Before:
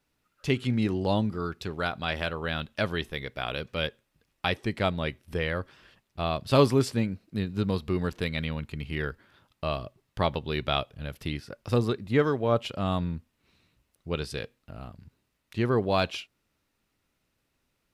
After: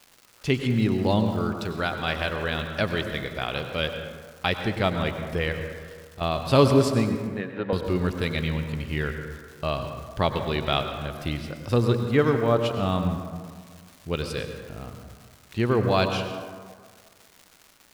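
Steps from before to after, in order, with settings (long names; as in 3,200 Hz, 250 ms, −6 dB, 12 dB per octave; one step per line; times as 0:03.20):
0:05.52–0:06.21: downward compressor, threshold −43 dBFS, peak gain reduction 15 dB
surface crackle 350 per second −41 dBFS
0:07.27–0:07.73: loudspeaker in its box 350–2,800 Hz, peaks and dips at 550 Hz +9 dB, 800 Hz +4 dB, 1,700 Hz +7 dB
convolution reverb RT60 1.8 s, pre-delay 86 ms, DRR 6 dB
level +2.5 dB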